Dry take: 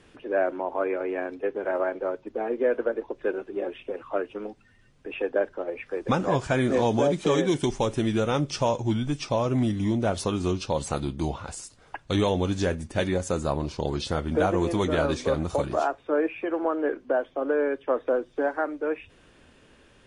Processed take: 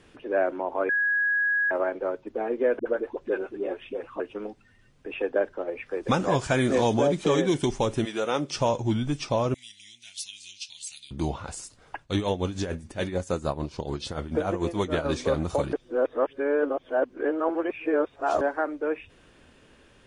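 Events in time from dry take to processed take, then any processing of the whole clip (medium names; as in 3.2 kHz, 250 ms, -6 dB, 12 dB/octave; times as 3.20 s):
0.89–1.71 s: bleep 1.66 kHz -21 dBFS
2.79–4.20 s: phase dispersion highs, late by 68 ms, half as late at 330 Hz
6.03–6.94 s: treble shelf 3.3 kHz +6.5 dB
8.04–8.54 s: high-pass 590 Hz -> 180 Hz
9.54–11.11 s: inverse Chebyshev high-pass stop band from 1.3 kHz
12.01–15.06 s: tremolo 6.8 Hz, depth 73%
15.73–18.41 s: reverse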